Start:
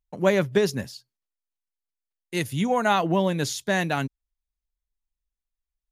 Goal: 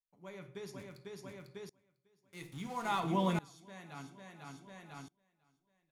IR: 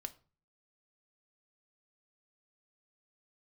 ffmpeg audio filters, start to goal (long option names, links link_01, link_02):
-filter_complex "[0:a]equalizer=frequency=120:width=0.73:gain=-3,aecho=1:1:0.9:0.44,asettb=1/sr,asplit=3[link_01][link_02][link_03];[link_01]atrim=end=0.794[link_04];[link_02]atrim=start=0.79:end=3,asetpts=PTS-STARTPTS,afade=type=in:duration=0.004:curve=qsin,afade=type=out:start_time=2.206:duration=0.004:curve=qsin,aeval=exprs='val(0)*gte(abs(val(0)),0.0282)':channel_layout=same[link_05];[link_03]atrim=start=2.996[link_06];[link_04][link_05]acrossfade=duration=0.004:curve1=hsin:curve2=qsin[link_07];[link_07][link_06]acrossfade=duration=0.004:curve1=qsin:curve2=hsin,flanger=delay=9.4:depth=3.1:regen=-75:speed=0.42:shape=triangular,aecho=1:1:498|996|1494|1992|2490:0.316|0.136|0.0585|0.0251|0.0108[link_08];[1:a]atrim=start_sample=2205,atrim=end_sample=4410,asetrate=23814,aresample=44100[link_09];[link_08][link_09]afir=irnorm=-1:irlink=0,aeval=exprs='val(0)*pow(10,-26*if(lt(mod(-0.59*n/s,1),2*abs(-0.59)/1000),1-mod(-0.59*n/s,1)/(2*abs(-0.59)/1000),(mod(-0.59*n/s,1)-2*abs(-0.59)/1000)/(1-2*abs(-0.59)/1000))/20)':channel_layout=same,volume=-2dB"